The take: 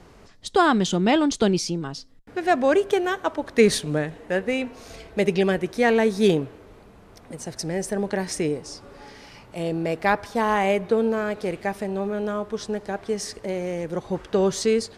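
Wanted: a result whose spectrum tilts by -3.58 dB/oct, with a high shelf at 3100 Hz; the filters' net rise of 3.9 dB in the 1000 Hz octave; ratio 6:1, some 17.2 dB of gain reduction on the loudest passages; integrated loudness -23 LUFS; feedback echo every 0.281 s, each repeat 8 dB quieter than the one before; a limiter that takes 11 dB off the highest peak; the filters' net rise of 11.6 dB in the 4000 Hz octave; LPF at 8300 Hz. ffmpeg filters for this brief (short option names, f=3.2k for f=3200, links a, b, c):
-af "lowpass=8.3k,equalizer=f=1k:t=o:g=4,highshelf=f=3.1k:g=8,equalizer=f=4k:t=o:g=8.5,acompressor=threshold=-30dB:ratio=6,alimiter=level_in=2.5dB:limit=-24dB:level=0:latency=1,volume=-2.5dB,aecho=1:1:281|562|843|1124|1405:0.398|0.159|0.0637|0.0255|0.0102,volume=13dB"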